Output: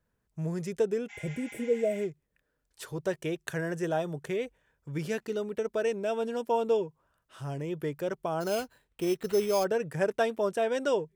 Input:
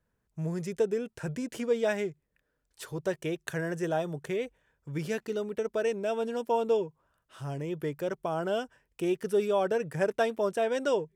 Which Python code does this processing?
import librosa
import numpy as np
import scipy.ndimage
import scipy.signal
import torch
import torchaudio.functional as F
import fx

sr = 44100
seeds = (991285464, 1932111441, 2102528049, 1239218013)

y = fx.spec_repair(x, sr, seeds[0], start_s=1.12, length_s=0.88, low_hz=680.0, high_hz=7500.0, source='after')
y = fx.sample_hold(y, sr, seeds[1], rate_hz=5700.0, jitter_pct=0, at=(8.4, 9.63), fade=0.02)